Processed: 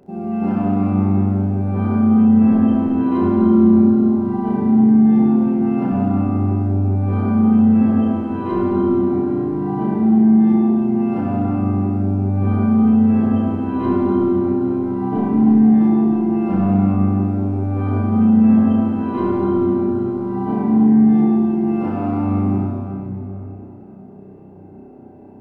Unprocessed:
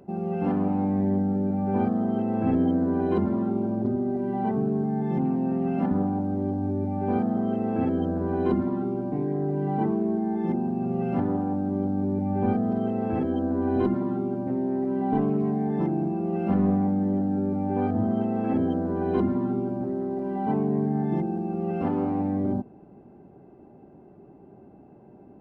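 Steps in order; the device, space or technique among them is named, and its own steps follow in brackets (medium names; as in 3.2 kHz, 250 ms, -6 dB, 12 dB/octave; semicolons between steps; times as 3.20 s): tunnel (flutter echo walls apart 5.4 m, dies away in 0.78 s; reverberation RT60 3.4 s, pre-delay 69 ms, DRR -1.5 dB)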